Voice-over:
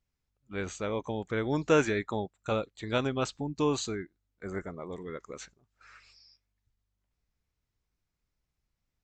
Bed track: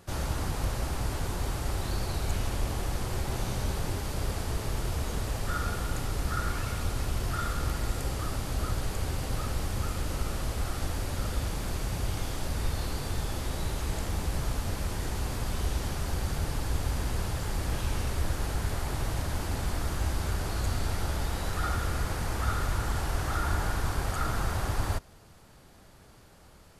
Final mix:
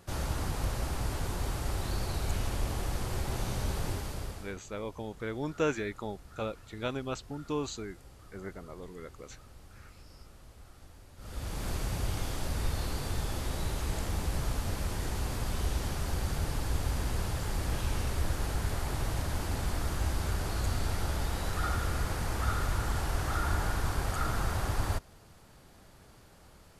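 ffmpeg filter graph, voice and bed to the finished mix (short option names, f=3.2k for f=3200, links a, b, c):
-filter_complex "[0:a]adelay=3900,volume=-5.5dB[a];[1:a]volume=18dB,afade=t=out:st=3.9:d=0.67:silence=0.105925,afade=t=in:st=11.17:d=0.52:silence=0.1[b];[a][b]amix=inputs=2:normalize=0"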